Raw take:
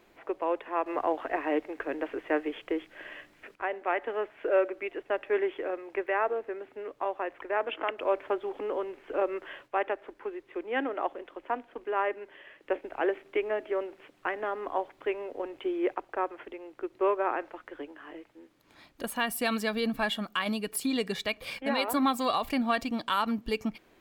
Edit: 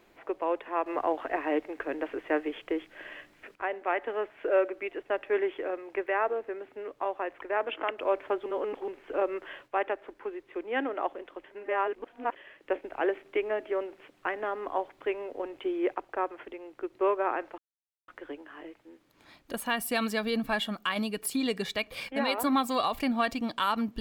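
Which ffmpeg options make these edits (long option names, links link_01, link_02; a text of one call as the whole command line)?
ffmpeg -i in.wav -filter_complex "[0:a]asplit=6[link_01][link_02][link_03][link_04][link_05][link_06];[link_01]atrim=end=8.462[link_07];[link_02]atrim=start=8.458:end=8.882,asetpts=PTS-STARTPTS,areverse[link_08];[link_03]atrim=start=8.878:end=11.442[link_09];[link_04]atrim=start=11.438:end=12.362,asetpts=PTS-STARTPTS,areverse[link_10];[link_05]atrim=start=12.358:end=17.58,asetpts=PTS-STARTPTS,afade=type=out:start_time=5.218:duration=0.004:curve=hsin,apad=pad_dur=0.5[link_11];[link_06]atrim=start=17.58,asetpts=PTS-STARTPTS,afade=type=in:duration=0.004:curve=hsin[link_12];[link_07][link_08]acrossfade=duration=0.004:curve1=hsin:curve2=hsin[link_13];[link_13][link_09]acrossfade=duration=0.004:curve1=hsin:curve2=hsin[link_14];[link_14][link_10]acrossfade=duration=0.004:curve1=hsin:curve2=hsin[link_15];[link_11][link_12]concat=n=2:v=0:a=1[link_16];[link_15][link_16]acrossfade=duration=0.004:curve1=hsin:curve2=hsin" out.wav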